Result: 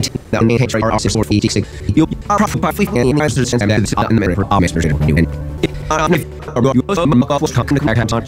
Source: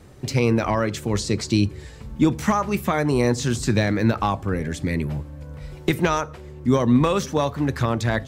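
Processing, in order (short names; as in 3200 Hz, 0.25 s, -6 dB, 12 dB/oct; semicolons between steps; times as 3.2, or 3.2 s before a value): slices in reverse order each 82 ms, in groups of 4; vocal rider within 5 dB 0.5 s; maximiser +10 dB; gain -1 dB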